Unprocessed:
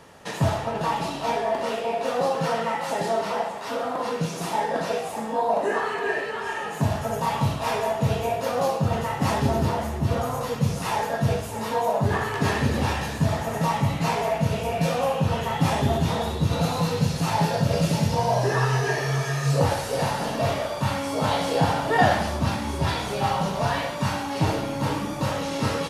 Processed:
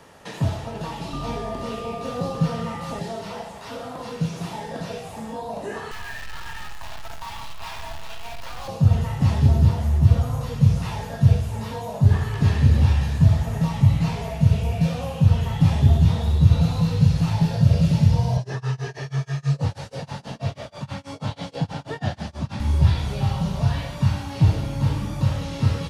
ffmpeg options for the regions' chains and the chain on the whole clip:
ffmpeg -i in.wav -filter_complex "[0:a]asettb=1/sr,asplit=3[link_01][link_02][link_03];[link_01]atrim=end=1.134[link_04];[link_02]atrim=start=1.13:end=2.99,asetpts=PTS-STARTPTS,afade=type=in:duration=0.004:curve=qsin,afade=type=out:start_time=1.856:duration=0.004:curve=qsin,lowshelf=frequency=290:gain=9.5,aeval=exprs='val(0)+0.0501*sin(2*PI*1200*n/s)':channel_layout=same[link_05];[link_03]atrim=start=2.986[link_06];[link_04][link_05]acrossfade=duration=0.004:curve1=hsin:curve2=qsin[link_07];[link_07][link_06]acrossfade=duration=0.004:curve1=qsin:curve2=hsin,asettb=1/sr,asplit=3[link_08][link_09][link_10];[link_08]atrim=end=5.914[link_11];[link_09]atrim=start=5.91:end=8.68,asetpts=PTS-STARTPTS,afade=type=in:duration=0.004:curve=qsin,afade=type=out:start_time=2.766:duration=0.004:curve=qsin,highpass=frequency=830:width=0.5412,highpass=frequency=830:width=1.3066,acrusher=bits=6:dc=4:mix=0:aa=0.000001[link_12];[link_10]atrim=start=8.676[link_13];[link_11][link_12]acrossfade=duration=0.004:curve1=hsin:curve2=qsin[link_14];[link_14][link_13]acrossfade=duration=0.004:curve1=qsin:curve2=hsin,asettb=1/sr,asplit=3[link_15][link_16][link_17];[link_15]atrim=end=18.374[link_18];[link_16]atrim=start=18.37:end=22.6,asetpts=PTS-STARTPTS,afade=type=in:duration=0.004:curve=qsin,afade=type=out:start_time=4.226:duration=0.004:curve=qsin,tremolo=f=6.2:d=0.98,highpass=150,lowpass=7100[link_19];[link_17]atrim=start=22.596[link_20];[link_18][link_19]acrossfade=duration=0.004:curve1=hsin:curve2=qsin[link_21];[link_21][link_20]acrossfade=duration=0.004:curve1=qsin:curve2=hsin,acrossover=split=4500[link_22][link_23];[link_23]acompressor=threshold=-48dB:ratio=4:attack=1:release=60[link_24];[link_22][link_24]amix=inputs=2:normalize=0,asubboost=boost=6.5:cutoff=110,acrossover=split=400|3000[link_25][link_26][link_27];[link_26]acompressor=threshold=-42dB:ratio=2[link_28];[link_25][link_28][link_27]amix=inputs=3:normalize=0" out.wav

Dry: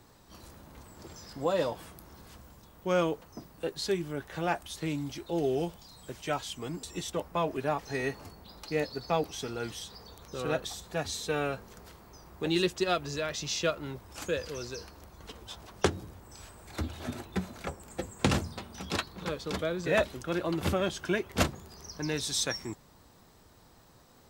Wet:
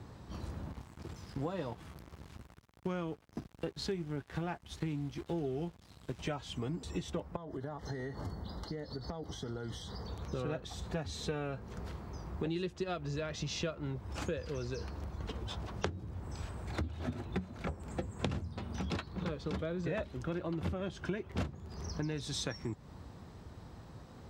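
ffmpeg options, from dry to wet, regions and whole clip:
ffmpeg -i in.wav -filter_complex "[0:a]asettb=1/sr,asplit=3[link_01][link_02][link_03];[link_01]atrim=end=0.724[link_04];[link_02]atrim=start=0.72:end=6.19,asetpts=PTS-STARTPTS,afade=type=in:duration=0.004:curve=qsin,afade=type=out:start_time=5.466:duration=0.004:curve=qsin,equalizer=frequency=560:width_type=o:width=0.33:gain=-7,acrusher=bits=9:dc=4:mix=0:aa=0.000001,aeval=exprs='sgn(val(0))*max(abs(val(0))-0.00376,0)':channel_layout=same[link_05];[link_03]atrim=start=6.186[link_06];[link_04][link_05]acrossfade=duration=0.004:curve1=hsin:curve2=qsin[link_07];[link_07][link_06]acrossfade=duration=0.004:curve1=qsin:curve2=hsin,asettb=1/sr,asplit=3[link_08][link_09][link_10];[link_08]atrim=end=7.364[link_11];[link_09]atrim=start=7.36:end=10.05,asetpts=PTS-STARTPTS,afade=type=in:duration=0.004:curve=qsin,afade=type=out:start_time=2.686:duration=0.004:curve=qsin,asuperstop=centerf=2500:order=8:qfactor=3.2,acompressor=threshold=-42dB:ratio=12:attack=3.2:release=140:knee=1:detection=peak[link_12];[link_10]atrim=start=10.046[link_13];[link_11][link_12]acrossfade=duration=0.004:curve1=hsin:curve2=qsin[link_14];[link_14][link_13]acrossfade=duration=0.004:curve1=qsin:curve2=hsin,highpass=74,aemphasis=mode=reproduction:type=bsi,acompressor=threshold=-38dB:ratio=6,volume=3.5dB" out.wav

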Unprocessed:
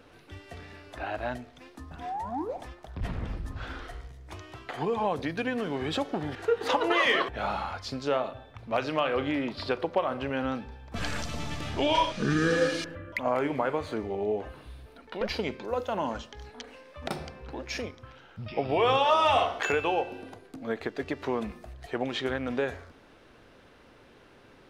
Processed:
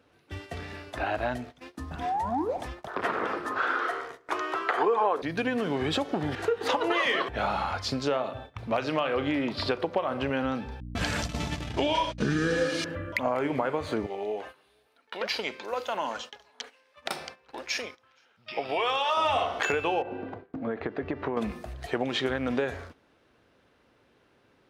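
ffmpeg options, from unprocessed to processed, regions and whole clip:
ffmpeg -i in.wav -filter_complex "[0:a]asettb=1/sr,asplit=3[link_01][link_02][link_03];[link_01]atrim=end=2.874[link_04];[link_02]atrim=start=2.87:end=5.22,asetpts=PTS-STARTPTS,afade=type=in:duration=0.004:curve=qsin,afade=type=out:start_time=2.346:duration=0.004:curve=qsin,highpass=frequency=390:width_type=q:width=2.6,equalizer=frequency=1300:width=1.1:gain=15[link_05];[link_03]atrim=start=5.216[link_06];[link_04][link_05]acrossfade=duration=0.004:curve1=hsin:curve2=qsin[link_07];[link_07][link_06]acrossfade=duration=0.004:curve1=qsin:curve2=hsin,asettb=1/sr,asplit=3[link_08][link_09][link_10];[link_08]atrim=end=10.804[link_11];[link_09]atrim=start=10.8:end=12.64,asetpts=PTS-STARTPTS,afade=type=in:duration=0.004:curve=qsin,afade=type=out:start_time=1.836:duration=0.004:curve=qsin,bandreject=frequency=1200:width=15,agate=range=-49dB:threshold=-34dB:ratio=16:release=100:detection=peak,aeval=exprs='val(0)+0.00708*(sin(2*PI*60*n/s)+sin(2*PI*2*60*n/s)/2+sin(2*PI*3*60*n/s)/3+sin(2*PI*4*60*n/s)/4+sin(2*PI*5*60*n/s)/5)':channel_layout=same[link_12];[link_10]atrim=start=12.636[link_13];[link_11][link_12]acrossfade=duration=0.004:curve1=hsin:curve2=qsin[link_14];[link_14][link_13]acrossfade=duration=0.004:curve1=qsin:curve2=hsin,asettb=1/sr,asplit=3[link_15][link_16][link_17];[link_15]atrim=end=14.064[link_18];[link_16]atrim=start=14.06:end=19.17,asetpts=PTS-STARTPTS,afade=type=in:duration=0.004:curve=qsin,afade=type=out:start_time=5.106:duration=0.004:curve=qsin,highpass=frequency=1200:poles=1,asoftclip=type=hard:threshold=-18dB,aecho=1:1:471:0.0794,atrim=end_sample=225351[link_19];[link_17]atrim=start=19.166[link_20];[link_18][link_19]acrossfade=duration=0.004:curve1=hsin:curve2=qsin[link_21];[link_21][link_20]acrossfade=duration=0.004:curve1=qsin:curve2=hsin,asettb=1/sr,asplit=3[link_22][link_23][link_24];[link_22]atrim=end=20.024[link_25];[link_23]atrim=start=20.02:end=21.37,asetpts=PTS-STARTPTS,afade=type=in:duration=0.004:curve=qsin,afade=type=out:start_time=1.346:duration=0.004:curve=qsin,lowpass=1800,acompressor=threshold=-31dB:ratio=6:attack=3.2:release=140:knee=1:detection=peak[link_26];[link_24]atrim=start=21.366[link_27];[link_25][link_26]acrossfade=duration=0.004:curve1=hsin:curve2=qsin[link_28];[link_28][link_27]acrossfade=duration=0.004:curve1=qsin:curve2=hsin,highpass=53,acompressor=threshold=-32dB:ratio=3,agate=range=-15dB:threshold=-49dB:ratio=16:detection=peak,volume=6.5dB" out.wav

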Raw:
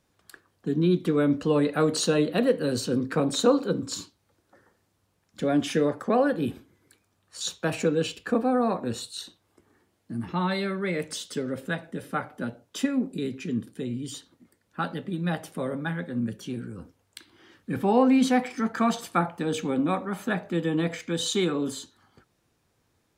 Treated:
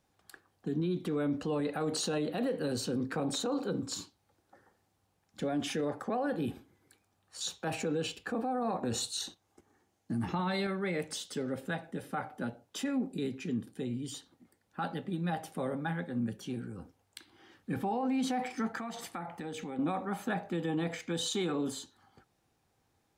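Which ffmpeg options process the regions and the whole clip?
ffmpeg -i in.wav -filter_complex "[0:a]asettb=1/sr,asplit=3[link_01][link_02][link_03];[link_01]atrim=end=8.834[link_04];[link_02]atrim=start=8.83:end=10.67,asetpts=PTS-STARTPTS,afade=type=in:duration=0.004:curve=qsin,afade=type=out:start_time=1.836:duration=0.004:curve=qsin,equalizer=frequency=6400:width=3.5:gain=7,agate=range=-8dB:threshold=-58dB:ratio=16:release=100:detection=peak,acontrast=54[link_05];[link_03]atrim=start=10.666[link_06];[link_04][link_05]acrossfade=duration=0.004:curve1=hsin:curve2=qsin[link_07];[link_07][link_06]acrossfade=duration=0.004:curve1=qsin:curve2=hsin,asettb=1/sr,asplit=3[link_08][link_09][link_10];[link_08]atrim=end=18.774[link_11];[link_09]atrim=start=18.77:end=19.79,asetpts=PTS-STARTPTS,afade=type=in:duration=0.004:curve=qsin,afade=type=out:start_time=1.016:duration=0.004:curve=qsin,equalizer=frequency=2000:width_type=o:width=0.21:gain=10.5,acompressor=threshold=-32dB:ratio=10:attack=3.2:release=140:knee=1:detection=peak[link_12];[link_10]atrim=start=19.786[link_13];[link_11][link_12]acrossfade=duration=0.004:curve1=hsin:curve2=qsin[link_14];[link_14][link_13]acrossfade=duration=0.004:curve1=qsin:curve2=hsin,equalizer=frequency=790:width_type=o:width=0.2:gain=9.5,alimiter=limit=-20.5dB:level=0:latency=1:release=26,volume=-4.5dB" out.wav

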